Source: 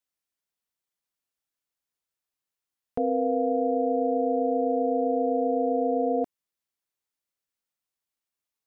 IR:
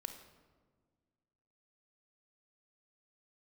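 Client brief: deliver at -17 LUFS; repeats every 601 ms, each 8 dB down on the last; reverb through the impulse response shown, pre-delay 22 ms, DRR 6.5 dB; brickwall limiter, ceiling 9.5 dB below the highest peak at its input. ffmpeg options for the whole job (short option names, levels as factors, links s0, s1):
-filter_complex "[0:a]alimiter=level_in=1.12:limit=0.0631:level=0:latency=1,volume=0.891,aecho=1:1:601|1202|1803|2404|3005:0.398|0.159|0.0637|0.0255|0.0102,asplit=2[s0][s1];[1:a]atrim=start_sample=2205,adelay=22[s2];[s1][s2]afir=irnorm=-1:irlink=0,volume=0.668[s3];[s0][s3]amix=inputs=2:normalize=0,volume=5.31"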